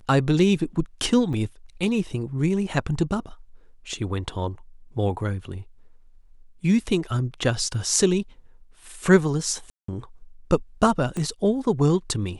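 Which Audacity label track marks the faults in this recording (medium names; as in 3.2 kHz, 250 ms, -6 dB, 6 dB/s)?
1.330000	1.330000	dropout 4 ms
9.700000	9.880000	dropout 184 ms
11.170000	11.170000	pop -18 dBFS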